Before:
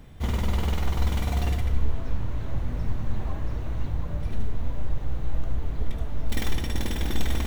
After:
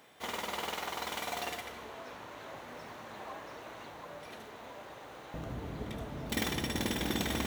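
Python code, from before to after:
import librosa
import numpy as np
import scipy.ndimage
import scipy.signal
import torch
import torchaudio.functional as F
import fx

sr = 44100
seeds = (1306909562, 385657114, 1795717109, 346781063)

y = fx.highpass(x, sr, hz=fx.steps((0.0, 550.0), (5.34, 150.0)), slope=12)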